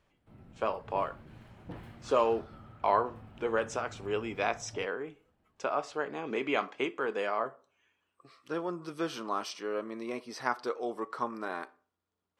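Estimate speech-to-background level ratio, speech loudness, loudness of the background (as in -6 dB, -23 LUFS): 17.5 dB, -34.0 LUFS, -51.5 LUFS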